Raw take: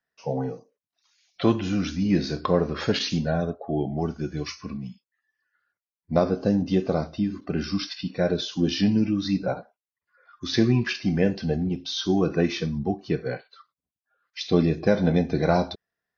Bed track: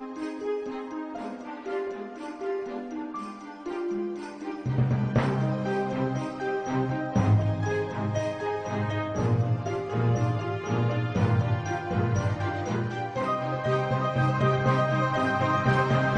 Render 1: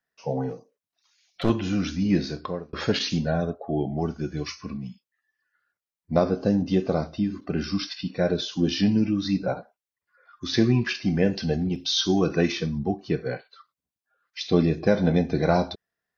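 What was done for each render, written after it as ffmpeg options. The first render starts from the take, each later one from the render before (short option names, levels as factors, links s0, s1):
-filter_complex "[0:a]asettb=1/sr,asplit=3[s0][s1][s2];[s0]atrim=end=0.494[s3];[s1]atrim=start=0.49:end=1.5,asetpts=PTS-STARTPTS,afade=t=in:d=0.004:c=qsin,afade=t=out:st=1.006:d=0.004:c=qsin,aeval=exprs='clip(val(0),-1,0.0376)':c=same[s4];[s2]atrim=start=1.496[s5];[s3][s4]acrossfade=d=0.004:c1=hsin:c2=qsin[s6];[s6][s5]acrossfade=d=0.004:c1=qsin:c2=hsin,asettb=1/sr,asplit=3[s7][s8][s9];[s7]atrim=end=11.334[s10];[s8]atrim=start=11.33:end=12.52,asetpts=PTS-STARTPTS,afade=t=in:d=0.004:c=qsin,afade=t=out:st=1.186:d=0.004:c=qsin,highshelf=f=2400:g=8[s11];[s9]atrim=start=12.516[s12];[s10][s11]acrossfade=d=0.004:c1=hsin:c2=qsin[s13];[s13][s12]acrossfade=d=0.004:c1=qsin:c2=hsin,asplit=2[s14][s15];[s14]atrim=end=2.73,asetpts=PTS-STARTPTS,afade=t=out:st=2.14:d=0.59[s16];[s15]atrim=start=2.73,asetpts=PTS-STARTPTS,afade=t=in:d=0.004:c=hsin[s17];[s16][s17]concat=n=2:v=0:a=1"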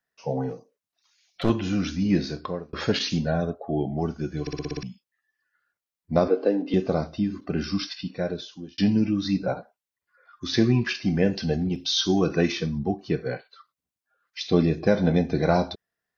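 -filter_complex "[0:a]asettb=1/sr,asplit=3[s0][s1][s2];[s0]atrim=end=6.284[s3];[s1]atrim=start=6.28:end=6.74,asetpts=PTS-STARTPTS,afade=t=in:d=0.004:c=qsin,afade=t=out:st=0.456:d=0.004:c=qsin,highpass=f=290:w=0.5412,highpass=f=290:w=1.3066,equalizer=f=300:t=q:w=4:g=5,equalizer=f=460:t=q:w=4:g=7,equalizer=f=2200:t=q:w=4:g=6,lowpass=f=4000:w=0.5412,lowpass=f=4000:w=1.3066[s4];[s2]atrim=start=6.736[s5];[s3][s4]acrossfade=d=0.004:c1=hsin:c2=qsin[s6];[s6][s5]acrossfade=d=0.004:c1=qsin:c2=hsin,asplit=9[s7][s8][s9][s10][s11][s12][s13][s14][s15];[s7]atrim=end=4.472[s16];[s8]atrim=start=4.408:end=4.472[s17];[s9]atrim=start=4.408:end=4.472[s18];[s10]atrim=start=4.408:end=4.472[s19];[s11]atrim=start=4.408:end=4.472[s20];[s12]atrim=start=4.408:end=4.472[s21];[s13]atrim=start=4.408:end=4.472[s22];[s14]atrim=start=4.828:end=8.78,asetpts=PTS-STARTPTS,afade=t=out:st=3.042:d=0.91[s23];[s15]atrim=start=8.78,asetpts=PTS-STARTPTS,afade=t=in:d=0.004:c=hsin[s24];[s16][s17]acrossfade=d=0.004:c1=hsin:c2=hsin[s25];[s25][s18]acrossfade=d=0.004:c1=hsin:c2=hsin[s26];[s26][s19]acrossfade=d=0.004:c1=hsin:c2=hsin[s27];[s27][s20]acrossfade=d=0.004:c1=hsin:c2=hsin[s28];[s28][s21]acrossfade=d=0.004:c1=hsin:c2=hsin[s29];[s29][s22]acrossfade=d=0.004:c1=hsin:c2=hsin[s30];[s23][s24]concat=n=2:v=0:a=1[s31];[s30][s31]acrossfade=d=0.004:c1=hsin:c2=hsin"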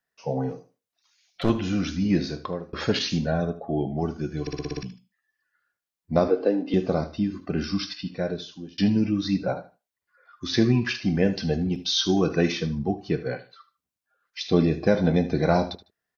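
-af "aecho=1:1:76|152:0.168|0.0386"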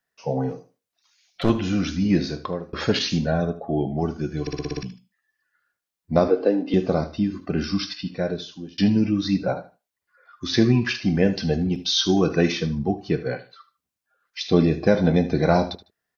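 -af "volume=1.33"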